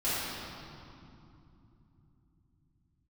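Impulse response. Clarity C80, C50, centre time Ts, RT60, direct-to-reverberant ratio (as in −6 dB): −2.0 dB, −4.5 dB, 174 ms, 2.8 s, −13.5 dB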